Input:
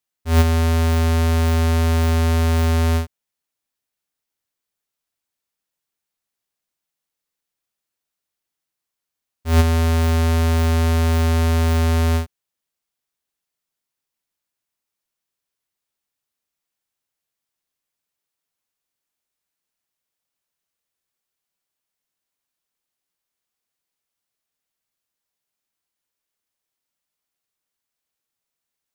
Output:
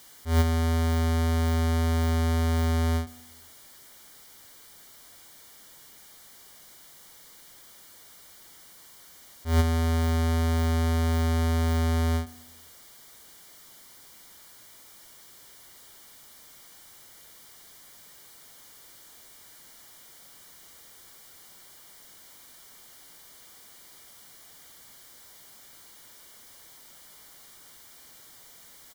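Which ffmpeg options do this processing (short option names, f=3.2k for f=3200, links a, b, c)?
-filter_complex "[0:a]aeval=exprs='val(0)+0.5*0.0141*sgn(val(0))':c=same,asuperstop=centerf=2600:order=8:qfactor=6.7,asplit=2[a][b];[b]adelay=118,lowpass=f=2k:p=1,volume=-21dB,asplit=2[c][d];[d]adelay=118,lowpass=f=2k:p=1,volume=0.54,asplit=2[e][f];[f]adelay=118,lowpass=f=2k:p=1,volume=0.54,asplit=2[g][h];[h]adelay=118,lowpass=f=2k:p=1,volume=0.54[i];[a][c][e][g][i]amix=inputs=5:normalize=0,volume=-7.5dB"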